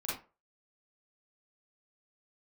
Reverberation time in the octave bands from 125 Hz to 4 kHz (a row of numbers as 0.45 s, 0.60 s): 0.25 s, 0.30 s, 0.35 s, 0.30 s, 0.25 s, 0.20 s